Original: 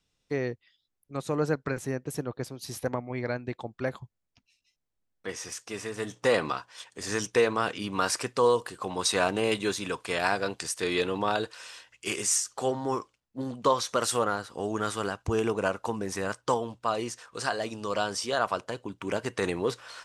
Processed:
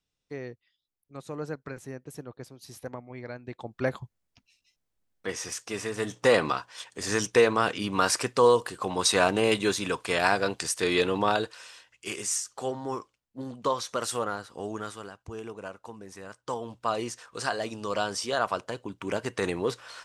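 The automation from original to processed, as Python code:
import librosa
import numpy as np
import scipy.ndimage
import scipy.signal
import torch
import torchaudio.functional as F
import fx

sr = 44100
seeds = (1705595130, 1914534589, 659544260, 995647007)

y = fx.gain(x, sr, db=fx.line((3.38, -8.0), (3.83, 3.0), (11.29, 3.0), (11.74, -3.5), (14.7, -3.5), (15.1, -12.0), (16.32, -12.0), (16.78, 0.0)))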